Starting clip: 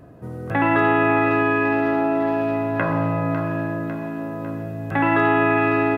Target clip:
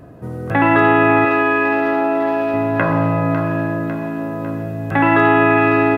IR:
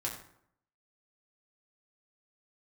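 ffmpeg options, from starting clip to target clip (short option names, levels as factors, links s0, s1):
-filter_complex "[0:a]asettb=1/sr,asplit=3[s0][s1][s2];[s0]atrim=end=1.254[s3];[s1]atrim=start=1.25:end=2.54,asetpts=PTS-STARTPTS,afade=t=in:d=0.004:c=qsin,afade=t=out:st=1.286:d=0.004:c=qsin,equalizer=f=120:t=o:w=1.8:g=-11.5[s4];[s2]atrim=start=2.536[s5];[s3][s4]acrossfade=d=0.004:c1=hsin:c2=qsin[s6];[s6][s5]acrossfade=d=0.004:c1=qsin:c2=hsin,volume=1.78"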